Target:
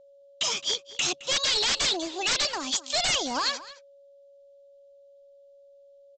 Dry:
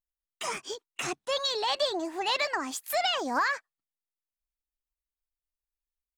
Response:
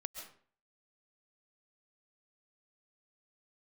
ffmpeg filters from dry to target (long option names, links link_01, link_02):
-filter_complex "[0:a]highshelf=frequency=2500:width_type=q:width=3:gain=10,aeval=exprs='val(0)+0.00251*sin(2*PI*560*n/s)':channel_layout=same,aresample=16000,aeval=exprs='0.106*(abs(mod(val(0)/0.106+3,4)-2)-1)':channel_layout=same,aresample=44100,asplit=2[link_01][link_02];[link_02]adelay=215.7,volume=-16dB,highshelf=frequency=4000:gain=-4.85[link_03];[link_01][link_03]amix=inputs=2:normalize=0"